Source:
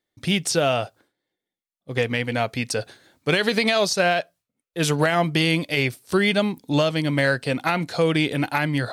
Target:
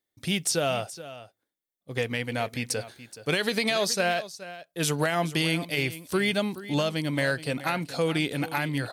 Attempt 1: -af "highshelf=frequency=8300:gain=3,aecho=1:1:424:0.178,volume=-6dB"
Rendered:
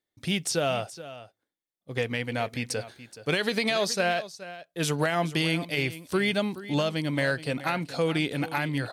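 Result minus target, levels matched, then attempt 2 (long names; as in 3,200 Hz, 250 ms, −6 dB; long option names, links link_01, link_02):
8,000 Hz band −3.0 dB
-af "highshelf=frequency=8300:gain=11,aecho=1:1:424:0.178,volume=-6dB"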